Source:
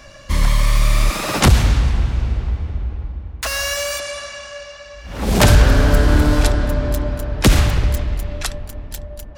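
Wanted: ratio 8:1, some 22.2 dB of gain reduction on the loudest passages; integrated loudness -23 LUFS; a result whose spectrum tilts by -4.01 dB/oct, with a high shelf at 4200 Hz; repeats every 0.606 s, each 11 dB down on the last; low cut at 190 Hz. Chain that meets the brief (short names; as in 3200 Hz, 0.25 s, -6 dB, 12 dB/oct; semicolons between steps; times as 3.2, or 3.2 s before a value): HPF 190 Hz; high shelf 4200 Hz -5.5 dB; compressor 8:1, threshold -35 dBFS; feedback echo 0.606 s, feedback 28%, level -11 dB; gain +15 dB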